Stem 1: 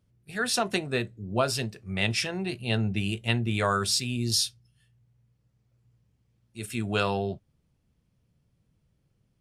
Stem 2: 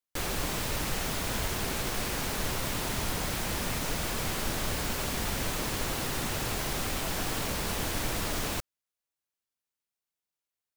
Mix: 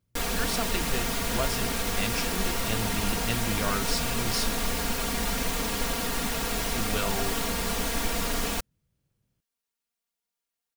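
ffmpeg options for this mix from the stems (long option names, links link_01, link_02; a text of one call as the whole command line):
ffmpeg -i stem1.wav -i stem2.wav -filter_complex "[0:a]volume=-6dB[link_01];[1:a]aecho=1:1:4.3:0.98,volume=0dB[link_02];[link_01][link_02]amix=inputs=2:normalize=0" out.wav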